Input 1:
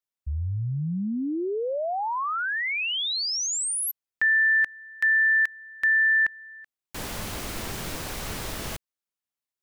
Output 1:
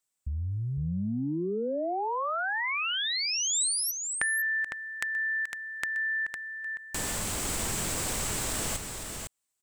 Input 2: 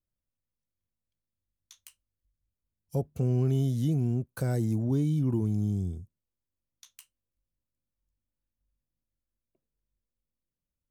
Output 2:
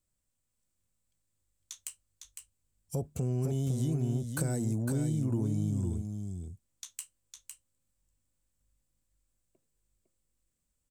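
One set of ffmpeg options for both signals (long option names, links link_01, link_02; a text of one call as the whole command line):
ffmpeg -i in.wav -filter_complex "[0:a]equalizer=frequency=7900:width_type=o:width=0.44:gain=13.5,acompressor=threshold=-40dB:ratio=3:attack=13:release=31:knee=6:detection=peak,asplit=2[link_01][link_02];[link_02]aecho=0:1:506:0.501[link_03];[link_01][link_03]amix=inputs=2:normalize=0,volume=5dB" out.wav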